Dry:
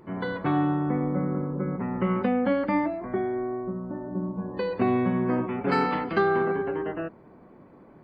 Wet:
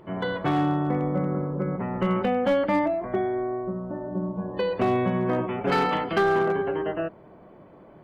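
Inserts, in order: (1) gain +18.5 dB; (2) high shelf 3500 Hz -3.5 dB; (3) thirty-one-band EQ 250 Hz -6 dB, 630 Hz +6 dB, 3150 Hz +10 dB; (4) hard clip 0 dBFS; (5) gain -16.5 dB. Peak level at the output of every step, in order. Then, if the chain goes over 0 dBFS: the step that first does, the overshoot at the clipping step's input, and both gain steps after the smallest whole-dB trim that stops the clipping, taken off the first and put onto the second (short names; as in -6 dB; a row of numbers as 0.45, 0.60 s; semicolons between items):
+7.5, +7.5, +7.5, 0.0, -16.5 dBFS; step 1, 7.5 dB; step 1 +10.5 dB, step 5 -8.5 dB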